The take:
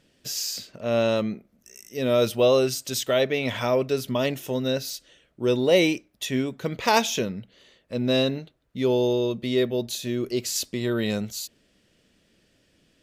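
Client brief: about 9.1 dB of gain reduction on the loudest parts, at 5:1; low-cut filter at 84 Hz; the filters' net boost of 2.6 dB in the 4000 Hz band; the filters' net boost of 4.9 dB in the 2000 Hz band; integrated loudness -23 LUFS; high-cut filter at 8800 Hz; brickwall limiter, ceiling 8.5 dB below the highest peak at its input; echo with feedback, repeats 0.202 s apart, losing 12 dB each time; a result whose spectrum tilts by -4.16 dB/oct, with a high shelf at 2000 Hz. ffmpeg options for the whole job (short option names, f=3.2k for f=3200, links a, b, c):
-af "highpass=84,lowpass=8.8k,highshelf=f=2k:g=-8,equalizer=f=2k:t=o:g=9,equalizer=f=4k:t=o:g=8,acompressor=threshold=-24dB:ratio=5,alimiter=limit=-18dB:level=0:latency=1,aecho=1:1:202|404|606:0.251|0.0628|0.0157,volume=7dB"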